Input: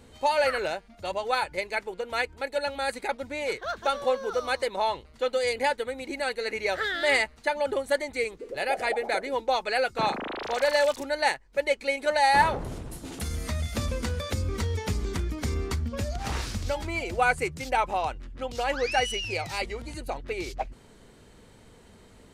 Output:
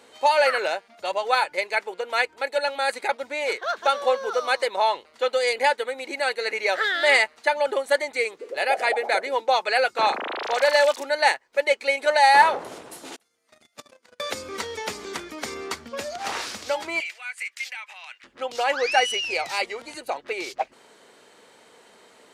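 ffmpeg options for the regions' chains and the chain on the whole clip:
-filter_complex "[0:a]asettb=1/sr,asplit=3[a][b][c];[a]atrim=end=13.164[d];[b]atrim=start=13.16:end=14.2,asetpts=PTS-STARTPTS,afade=t=in:d=0.004:c=qsin,afade=t=out:st=1.036:d=0.004:c=qsin,agate=range=-41dB:threshold=-25dB:ratio=16:release=100:detection=peak,lowshelf=f=85:g=-12,acontrast=36[e];[c]atrim=start=14.196[f];[d][e]acrossfade=d=0.004:c1=hsin:c2=qsin[g];[g][f]acrossfade=d=0.004:c1=qsin:c2=hsin,asettb=1/sr,asplit=3[h][i][j];[h]atrim=end=17.004[k];[i]atrim=start=17:end=18.24,asetpts=PTS-STARTPTS,afade=t=in:d=0.004:c=qsin,afade=t=out:st=1.236:d=0.004:c=qsin,acompressor=threshold=-34dB:ratio=10:attack=3.2:release=140:knee=1:detection=peak,highpass=f=2.1k:t=q:w=2.4[l];[j]atrim=start=18.236[m];[k][l]acrossfade=d=0.004:c1=hsin:c2=qsin[n];[n][m]acrossfade=d=0.004:c1=qsin:c2=hsin,highpass=490,highshelf=f=9.2k:g=-6,volume=6dB"

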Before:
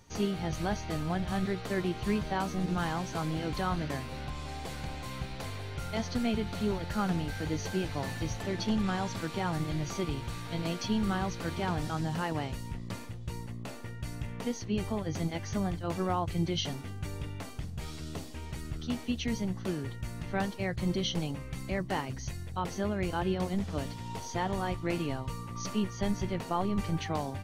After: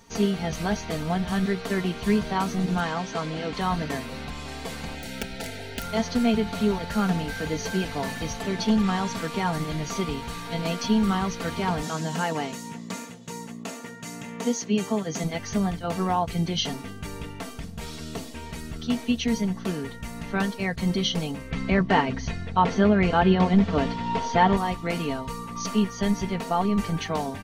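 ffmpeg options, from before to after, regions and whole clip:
-filter_complex "[0:a]asettb=1/sr,asplit=3[a][b][c];[a]atrim=end=2.804[d];[b]atrim=start=2.8:end=3.61,asetpts=PTS-STARTPTS,afade=t=in:d=0.004:c=qsin,afade=t=out:st=0.806:d=0.004:c=qsin,lowpass=5.9k,lowshelf=f=110:g=-9.5[e];[c]atrim=start=3.606[f];[d][e]acrossfade=d=0.004:c1=hsin:c2=qsin[g];[g][f]acrossfade=d=0.004:c1=qsin:c2=hsin,asettb=1/sr,asplit=3[h][i][j];[h]atrim=end=4.944[k];[i]atrim=start=4.94:end=5.84,asetpts=PTS-STARTPTS,afade=t=in:d=0.004:c=qsin,afade=t=out:st=0.896:d=0.004:c=qsin,aeval=exprs='(mod(25.1*val(0)+1,2)-1)/25.1':c=same,asuperstop=centerf=1100:order=8:qfactor=3.1[l];[j]atrim=start=5.836[m];[k][l]acrossfade=d=0.004:c1=hsin:c2=qsin[n];[n][m]acrossfade=d=0.004:c1=qsin:c2=hsin,asettb=1/sr,asplit=3[o][p][q];[o]atrim=end=11.834[r];[p]atrim=start=11.83:end=15.24,asetpts=PTS-STARTPTS,afade=t=in:d=0.004:c=qsin,afade=t=out:st=3.406:d=0.004:c=qsin,highpass=f=140:w=0.5412,highpass=f=140:w=1.3066,equalizer=f=6.8k:t=o:w=0.35:g=9.5[s];[q]atrim=start=15.236[t];[r][s]acrossfade=d=0.004:c1=hsin:c2=qsin[u];[u][t]acrossfade=d=0.004:c1=qsin:c2=hsin,asettb=1/sr,asplit=3[v][w][x];[v]atrim=end=21.514[y];[w]atrim=start=21.51:end=24.57,asetpts=PTS-STARTPTS,afade=t=in:d=0.004:c=qsin,afade=t=out:st=3.056:d=0.004:c=qsin,lowpass=3.4k,acontrast=58[z];[x]atrim=start=24.566[aa];[y][z]acrossfade=d=0.004:c1=hsin:c2=qsin[ab];[ab][aa]acrossfade=d=0.004:c1=qsin:c2=hsin,lowshelf=f=84:g=-7.5,aecho=1:1:4.4:0.59,volume=5.5dB"

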